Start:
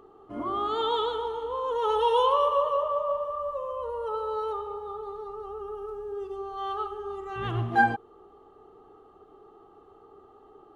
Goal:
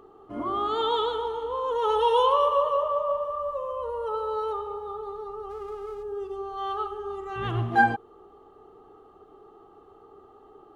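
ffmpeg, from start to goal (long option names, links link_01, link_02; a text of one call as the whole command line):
ffmpeg -i in.wav -filter_complex "[0:a]asplit=3[link_01][link_02][link_03];[link_01]afade=type=out:start_time=5.49:duration=0.02[link_04];[link_02]aeval=exprs='sgn(val(0))*max(abs(val(0))-0.00168,0)':channel_layout=same,afade=type=in:start_time=5.49:duration=0.02,afade=type=out:start_time=6.02:duration=0.02[link_05];[link_03]afade=type=in:start_time=6.02:duration=0.02[link_06];[link_04][link_05][link_06]amix=inputs=3:normalize=0,volume=1.5dB" out.wav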